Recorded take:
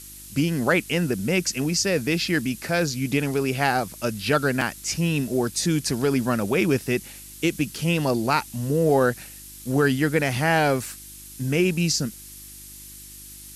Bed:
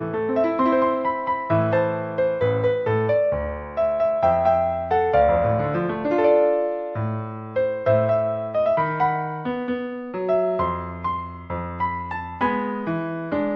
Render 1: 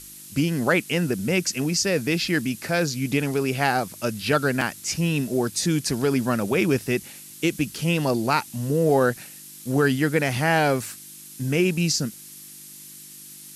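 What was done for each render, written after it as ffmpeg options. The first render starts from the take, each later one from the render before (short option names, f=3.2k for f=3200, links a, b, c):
-af "bandreject=f=50:t=h:w=4,bandreject=f=100:t=h:w=4"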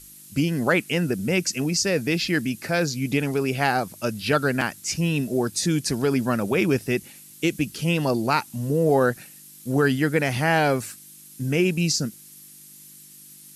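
-af "afftdn=nr=6:nf=-43"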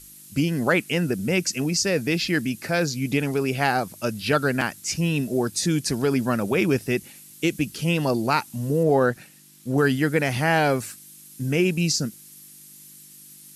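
-filter_complex "[0:a]asettb=1/sr,asplit=3[a][b][c];[a]atrim=end=8.834[d];[b]atrim=start=8.83:end=9.78,asetpts=PTS-STARTPTS,afade=t=in:d=0.004:c=qsin,afade=t=out:st=0.946:d=0.004:c=qsin,highshelf=f=7.1k:g=-9[e];[c]atrim=start=9.776[f];[d][e]acrossfade=d=0.004:c1=hsin:c2=qsin[g];[g][f]acrossfade=d=0.004:c1=qsin:c2=hsin"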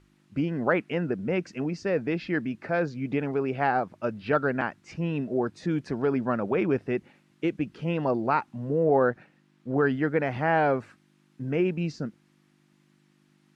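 -af "lowpass=1.4k,lowshelf=f=250:g=-9"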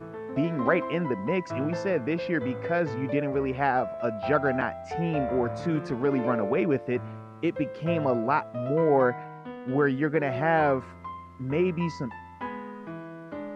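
-filter_complex "[1:a]volume=-13.5dB[a];[0:a][a]amix=inputs=2:normalize=0"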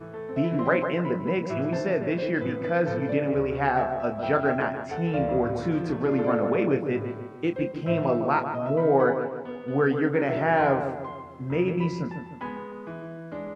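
-filter_complex "[0:a]asplit=2[a][b];[b]adelay=29,volume=-9dB[c];[a][c]amix=inputs=2:normalize=0,asplit=2[d][e];[e]adelay=152,lowpass=f=1.6k:p=1,volume=-7dB,asplit=2[f][g];[g]adelay=152,lowpass=f=1.6k:p=1,volume=0.51,asplit=2[h][i];[i]adelay=152,lowpass=f=1.6k:p=1,volume=0.51,asplit=2[j][k];[k]adelay=152,lowpass=f=1.6k:p=1,volume=0.51,asplit=2[l][m];[m]adelay=152,lowpass=f=1.6k:p=1,volume=0.51,asplit=2[n][o];[o]adelay=152,lowpass=f=1.6k:p=1,volume=0.51[p];[d][f][h][j][l][n][p]amix=inputs=7:normalize=0"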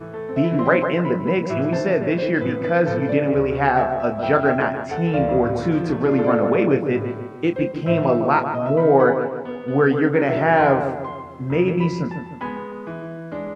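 -af "volume=6dB"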